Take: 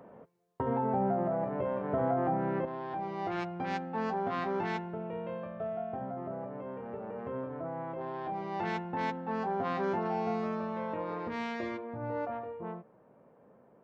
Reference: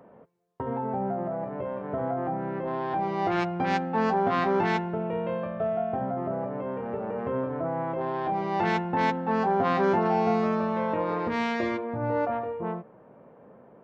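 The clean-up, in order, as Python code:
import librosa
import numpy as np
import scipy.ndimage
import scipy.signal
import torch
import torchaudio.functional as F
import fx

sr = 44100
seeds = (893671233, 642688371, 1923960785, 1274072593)

y = fx.gain(x, sr, db=fx.steps((0.0, 0.0), (2.65, 8.5)))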